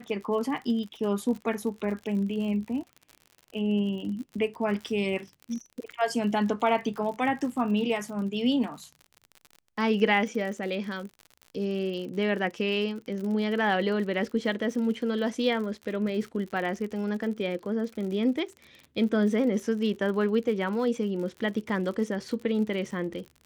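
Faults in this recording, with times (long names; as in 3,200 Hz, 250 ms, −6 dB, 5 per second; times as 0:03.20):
surface crackle 60 per second −36 dBFS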